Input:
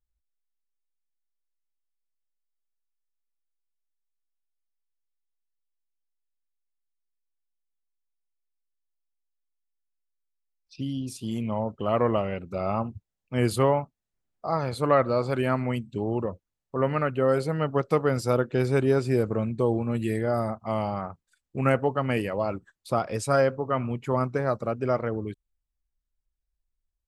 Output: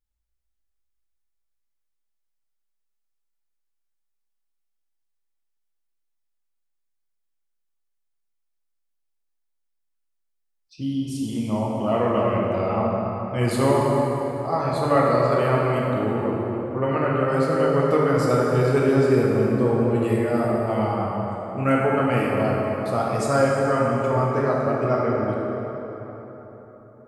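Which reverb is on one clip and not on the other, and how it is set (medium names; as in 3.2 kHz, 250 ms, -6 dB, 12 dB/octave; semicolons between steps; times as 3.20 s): plate-style reverb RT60 4.1 s, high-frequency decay 0.55×, DRR -4.5 dB; trim -1 dB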